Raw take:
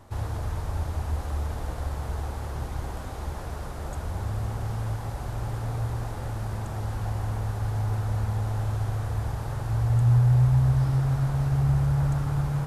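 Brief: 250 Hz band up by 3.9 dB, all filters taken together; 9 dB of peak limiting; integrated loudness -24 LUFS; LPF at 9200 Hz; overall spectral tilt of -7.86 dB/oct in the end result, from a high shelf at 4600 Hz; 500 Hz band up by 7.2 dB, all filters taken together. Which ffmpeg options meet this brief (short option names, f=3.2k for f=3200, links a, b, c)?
-af "lowpass=9.2k,equalizer=f=250:t=o:g=7.5,equalizer=f=500:t=o:g=7,highshelf=f=4.6k:g=4,volume=4.5dB,alimiter=limit=-14.5dB:level=0:latency=1"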